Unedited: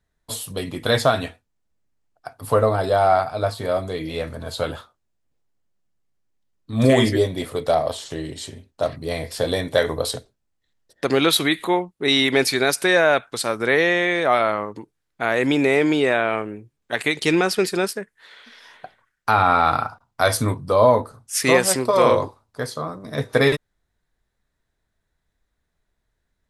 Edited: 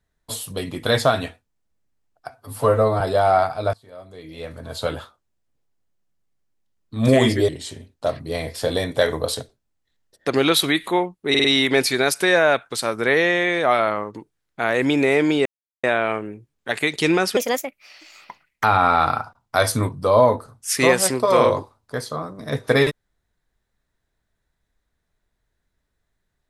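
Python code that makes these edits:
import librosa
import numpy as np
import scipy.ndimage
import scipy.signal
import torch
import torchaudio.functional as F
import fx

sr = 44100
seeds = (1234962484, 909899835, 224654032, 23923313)

y = fx.edit(x, sr, fx.stretch_span(start_s=2.3, length_s=0.47, factor=1.5),
    fx.fade_in_from(start_s=3.5, length_s=1.08, curve='qua', floor_db=-22.0),
    fx.cut(start_s=7.25, length_s=1.0),
    fx.stutter(start_s=12.06, slice_s=0.05, count=4),
    fx.insert_silence(at_s=16.07, length_s=0.38),
    fx.speed_span(start_s=17.6, length_s=1.69, speed=1.33), tone=tone)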